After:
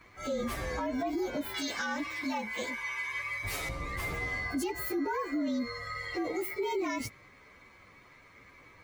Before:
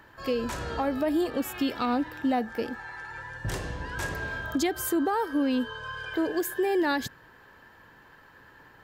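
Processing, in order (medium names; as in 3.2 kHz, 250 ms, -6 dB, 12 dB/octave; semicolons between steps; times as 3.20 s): frequency axis rescaled in octaves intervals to 113%; 1.54–3.69 s: tilt shelf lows -7.5 dB, about 700 Hz; peak limiter -27 dBFS, peak gain reduction 10.5 dB; trim +1.5 dB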